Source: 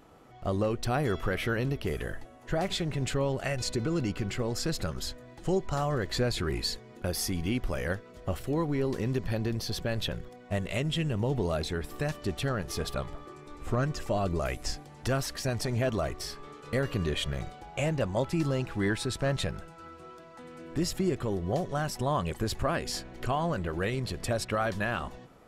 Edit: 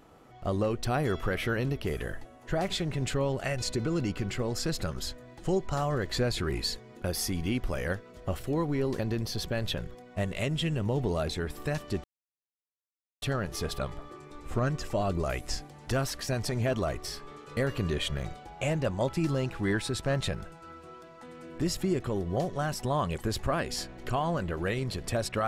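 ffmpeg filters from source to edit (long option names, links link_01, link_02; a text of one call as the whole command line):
ffmpeg -i in.wav -filter_complex "[0:a]asplit=3[link_01][link_02][link_03];[link_01]atrim=end=8.992[link_04];[link_02]atrim=start=9.328:end=12.38,asetpts=PTS-STARTPTS,afade=type=out:start_time=3.048:duration=0.004:curve=hsin,apad=pad_dur=1.18[link_05];[link_03]atrim=start=12.38,asetpts=PTS-STARTPTS,afade=type=in:duration=0.004:curve=hsin[link_06];[link_05][link_06]concat=n=2:v=0:a=1[link_07];[link_04][link_07]acrossfade=duration=0.004:curve1=hsin:curve2=hsin" out.wav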